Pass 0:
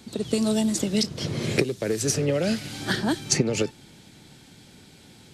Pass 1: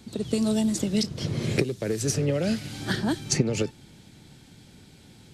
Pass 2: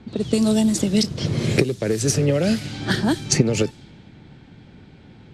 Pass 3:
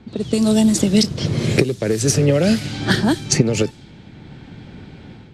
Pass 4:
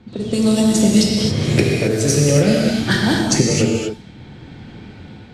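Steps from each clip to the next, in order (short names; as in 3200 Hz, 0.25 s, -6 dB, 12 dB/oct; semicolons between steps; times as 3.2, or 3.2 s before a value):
low shelf 180 Hz +7.5 dB; gain -3.5 dB
low-pass opened by the level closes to 2100 Hz, open at -22.5 dBFS; gain +6 dB
AGC gain up to 8 dB
non-linear reverb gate 0.3 s flat, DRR -2 dB; gain -2 dB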